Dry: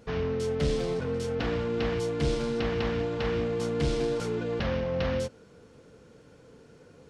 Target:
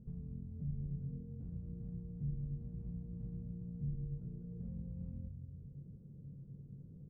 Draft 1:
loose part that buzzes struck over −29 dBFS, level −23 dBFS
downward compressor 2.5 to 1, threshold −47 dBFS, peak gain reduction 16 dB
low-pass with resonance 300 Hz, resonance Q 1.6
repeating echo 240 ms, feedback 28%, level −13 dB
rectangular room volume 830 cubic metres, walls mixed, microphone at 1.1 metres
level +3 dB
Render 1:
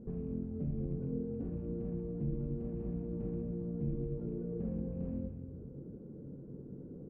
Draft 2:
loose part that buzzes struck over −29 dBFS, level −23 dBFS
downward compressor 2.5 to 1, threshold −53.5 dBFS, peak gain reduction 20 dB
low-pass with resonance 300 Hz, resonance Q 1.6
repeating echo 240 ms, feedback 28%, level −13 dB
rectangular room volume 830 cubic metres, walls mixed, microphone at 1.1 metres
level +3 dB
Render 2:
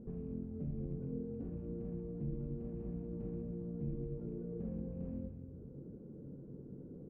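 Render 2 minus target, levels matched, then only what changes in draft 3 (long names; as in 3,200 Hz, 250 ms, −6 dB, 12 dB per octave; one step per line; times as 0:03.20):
125 Hz band −3.0 dB
change: low-pass with resonance 140 Hz, resonance Q 1.6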